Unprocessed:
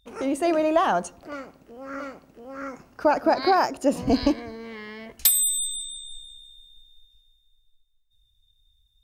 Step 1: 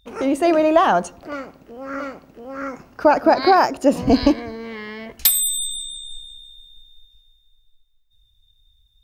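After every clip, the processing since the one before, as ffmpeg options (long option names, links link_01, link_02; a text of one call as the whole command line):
ffmpeg -i in.wav -af "equalizer=frequency=9100:width_type=o:width=1.1:gain=-5,volume=6dB" out.wav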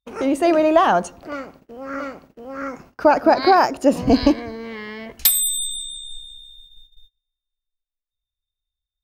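ffmpeg -i in.wav -af "agate=range=-27dB:threshold=-45dB:ratio=16:detection=peak" out.wav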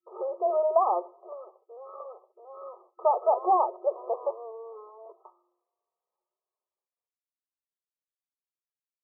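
ffmpeg -i in.wav -af "afftfilt=real='re*between(b*sr/4096,350,1300)':imag='im*between(b*sr/4096,350,1300)':win_size=4096:overlap=0.75,flanger=delay=2.9:depth=1.6:regen=-44:speed=0.76:shape=sinusoidal,volume=-4dB" out.wav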